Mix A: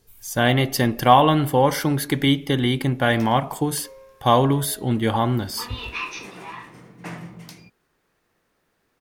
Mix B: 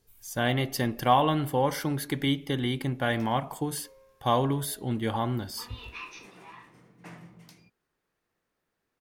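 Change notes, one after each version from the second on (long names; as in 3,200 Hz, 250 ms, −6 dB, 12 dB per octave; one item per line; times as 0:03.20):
speech −8.0 dB
background −11.5 dB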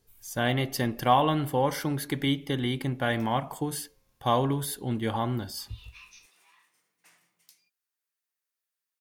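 background: add first difference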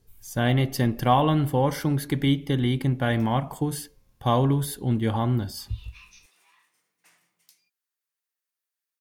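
speech: add low-shelf EQ 260 Hz +9.5 dB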